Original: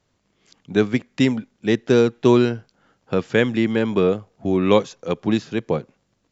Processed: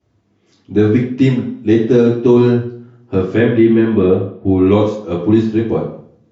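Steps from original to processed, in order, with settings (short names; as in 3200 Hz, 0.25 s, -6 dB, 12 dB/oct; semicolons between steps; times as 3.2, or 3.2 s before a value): 3.36–4.63 LPF 4300 Hz 24 dB/oct; reverb RT60 0.55 s, pre-delay 3 ms, DRR -11 dB; maximiser -12 dB; gain -1 dB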